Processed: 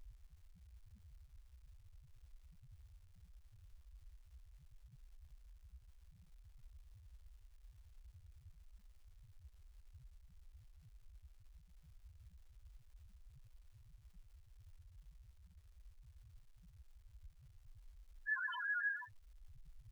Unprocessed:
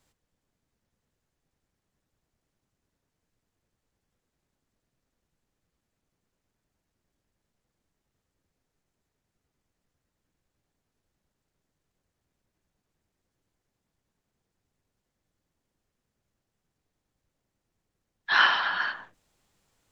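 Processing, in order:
low-shelf EQ 130 Hz +11.5 dB
in parallel at +0.5 dB: upward compression, threshold −37 dBFS
on the sum: tube saturation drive 26 dB, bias 0.55
gain into a clipping stage and back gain 31 dB
spectral peaks only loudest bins 1
surface crackle 490 per second −72 dBFS
level +6.5 dB

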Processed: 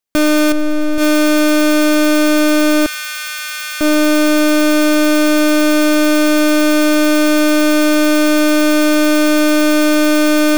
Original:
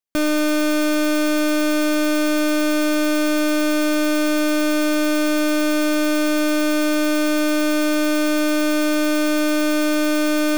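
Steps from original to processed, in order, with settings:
0:00.52–0:00.98: spectral tilt −2 dB per octave
0:02.86–0:03.81: high-pass filter 1,400 Hz 24 dB per octave
brickwall limiter −17 dBFS, peak gain reduction 8 dB
level +7 dB

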